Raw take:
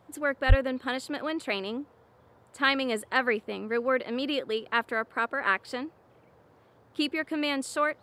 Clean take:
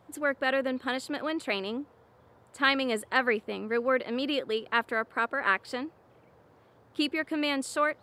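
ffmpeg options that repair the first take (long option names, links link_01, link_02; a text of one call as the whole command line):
ffmpeg -i in.wav -filter_complex "[0:a]asplit=3[link_01][link_02][link_03];[link_01]afade=type=out:start_time=0.48:duration=0.02[link_04];[link_02]highpass=frequency=140:width=0.5412,highpass=frequency=140:width=1.3066,afade=type=in:start_time=0.48:duration=0.02,afade=type=out:start_time=0.6:duration=0.02[link_05];[link_03]afade=type=in:start_time=0.6:duration=0.02[link_06];[link_04][link_05][link_06]amix=inputs=3:normalize=0" out.wav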